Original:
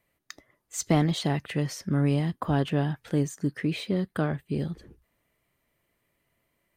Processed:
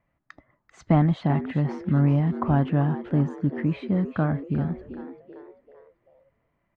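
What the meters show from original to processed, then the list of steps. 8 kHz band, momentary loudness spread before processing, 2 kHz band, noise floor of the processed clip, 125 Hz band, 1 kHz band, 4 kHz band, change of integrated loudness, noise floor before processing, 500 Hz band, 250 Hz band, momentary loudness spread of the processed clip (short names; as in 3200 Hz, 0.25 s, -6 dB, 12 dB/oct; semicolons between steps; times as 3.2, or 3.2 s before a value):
under -20 dB, 7 LU, -1.5 dB, -75 dBFS, +5.0 dB, +3.5 dB, under -10 dB, +4.0 dB, -76 dBFS, +0.5 dB, +3.5 dB, 9 LU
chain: LPF 1300 Hz 12 dB/oct; bell 420 Hz -11 dB 0.68 oct; frequency-shifting echo 0.389 s, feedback 44%, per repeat +94 Hz, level -13 dB; gain +5.5 dB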